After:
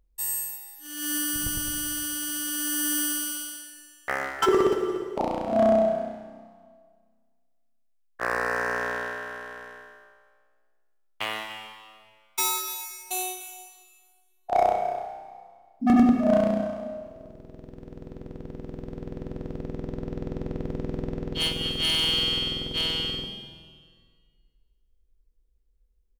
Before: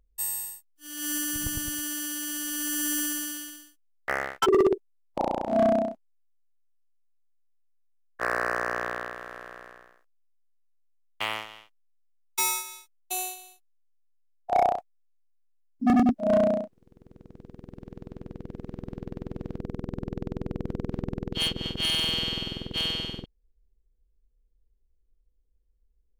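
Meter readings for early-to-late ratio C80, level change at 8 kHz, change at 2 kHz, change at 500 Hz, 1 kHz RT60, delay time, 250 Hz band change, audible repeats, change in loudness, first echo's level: 6.5 dB, +1.5 dB, +2.0 dB, +1.5 dB, 1.8 s, 294 ms, +2.5 dB, 1, +1.5 dB, -15.0 dB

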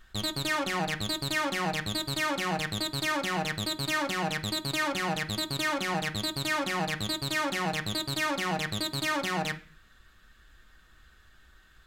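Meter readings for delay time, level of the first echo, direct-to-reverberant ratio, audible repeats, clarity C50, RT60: no echo, no echo, 3.0 dB, no echo, 15.5 dB, 0.40 s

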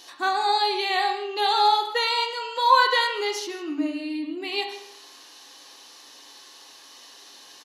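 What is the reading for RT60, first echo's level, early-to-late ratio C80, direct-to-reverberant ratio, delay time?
0.80 s, -16.5 dB, 8.5 dB, 2.0 dB, 154 ms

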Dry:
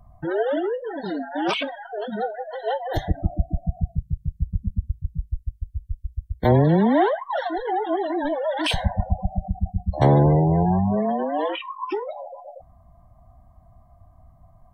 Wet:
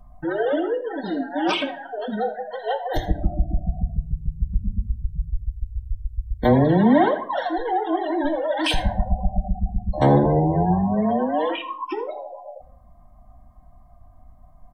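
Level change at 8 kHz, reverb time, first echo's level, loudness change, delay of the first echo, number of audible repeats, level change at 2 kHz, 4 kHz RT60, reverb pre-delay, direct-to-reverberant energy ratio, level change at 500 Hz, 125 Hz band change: no reading, 0.50 s, -16.0 dB, +0.5 dB, 79 ms, 1, +1.5 dB, 0.35 s, 3 ms, 4.5 dB, +0.5 dB, -2.0 dB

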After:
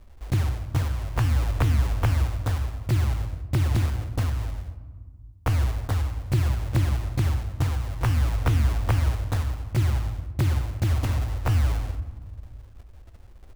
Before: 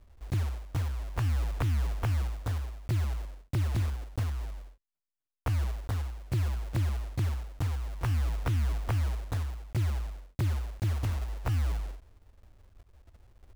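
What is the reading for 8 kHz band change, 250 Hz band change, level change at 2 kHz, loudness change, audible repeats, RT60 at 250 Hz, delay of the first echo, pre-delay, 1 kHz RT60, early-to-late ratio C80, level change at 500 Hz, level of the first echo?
+7.0 dB, +8.0 dB, +7.5 dB, +6.5 dB, no echo, 2.4 s, no echo, 3 ms, 1.5 s, 14.0 dB, +7.5 dB, no echo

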